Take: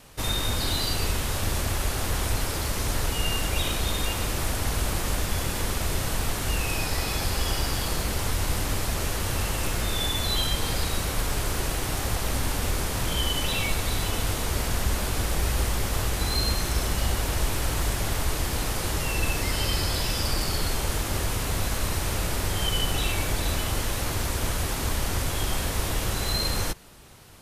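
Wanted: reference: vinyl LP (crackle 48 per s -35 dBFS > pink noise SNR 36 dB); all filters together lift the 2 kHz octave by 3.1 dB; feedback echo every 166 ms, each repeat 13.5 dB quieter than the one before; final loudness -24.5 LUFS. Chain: peaking EQ 2 kHz +4 dB; feedback delay 166 ms, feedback 21%, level -13.5 dB; crackle 48 per s -35 dBFS; pink noise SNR 36 dB; trim +2 dB

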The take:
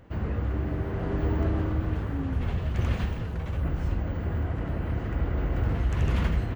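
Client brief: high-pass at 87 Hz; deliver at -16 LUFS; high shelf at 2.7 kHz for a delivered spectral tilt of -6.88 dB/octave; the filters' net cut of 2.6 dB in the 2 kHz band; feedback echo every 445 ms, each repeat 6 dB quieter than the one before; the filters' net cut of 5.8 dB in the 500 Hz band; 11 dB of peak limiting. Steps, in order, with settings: high-pass 87 Hz; peaking EQ 500 Hz -8 dB; peaking EQ 2 kHz -6 dB; treble shelf 2.7 kHz +7.5 dB; peak limiter -29 dBFS; feedback delay 445 ms, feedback 50%, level -6 dB; trim +20.5 dB

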